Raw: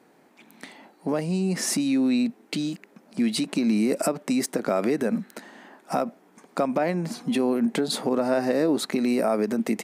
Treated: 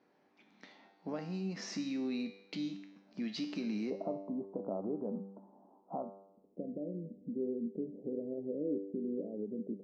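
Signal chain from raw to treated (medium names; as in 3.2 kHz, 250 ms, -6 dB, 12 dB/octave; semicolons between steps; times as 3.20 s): steep low-pass 6 kHz 48 dB/octave, from 3.89 s 1 kHz, from 6.02 s 520 Hz; feedback comb 98 Hz, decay 0.82 s, harmonics all, mix 80%; trim -2.5 dB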